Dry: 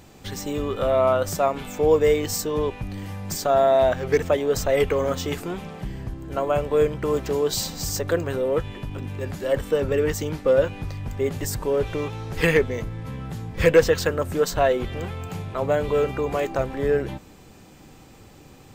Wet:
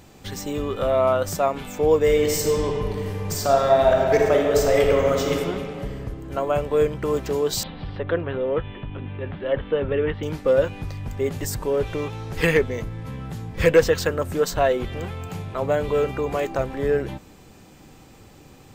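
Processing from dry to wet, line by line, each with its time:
2.04–5.36 s: reverb throw, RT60 2.4 s, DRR 0 dB
7.63–10.23 s: elliptic low-pass 3.4 kHz, stop band 50 dB

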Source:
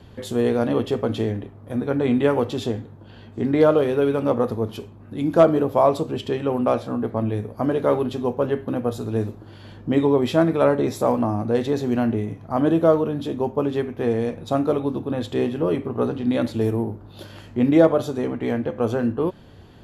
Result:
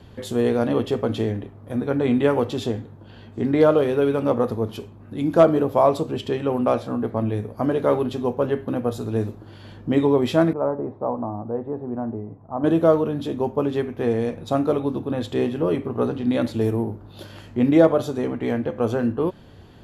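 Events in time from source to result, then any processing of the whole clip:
10.53–12.64 s: four-pole ladder low-pass 1.2 kHz, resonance 35%

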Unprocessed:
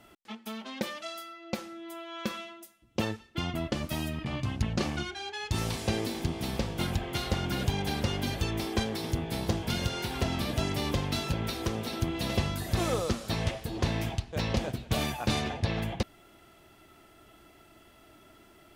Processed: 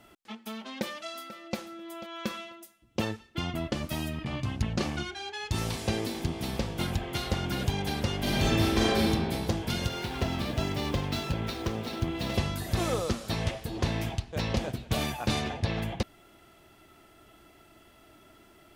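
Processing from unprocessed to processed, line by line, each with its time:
0.64–1.57 s: echo throw 490 ms, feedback 20%, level -15 dB
8.18–9.08 s: reverb throw, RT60 1.7 s, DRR -6 dB
9.88–12.34 s: median filter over 5 samples

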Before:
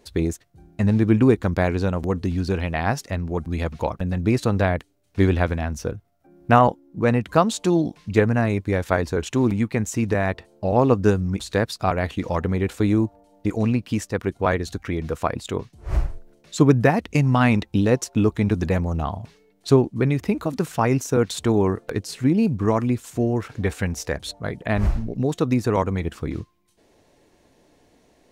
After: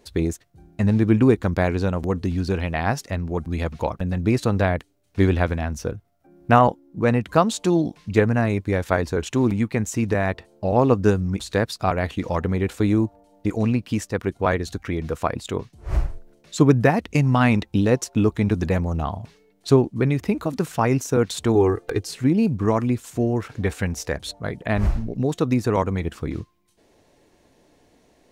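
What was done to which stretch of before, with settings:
21.55–22.09 s: comb 2.5 ms

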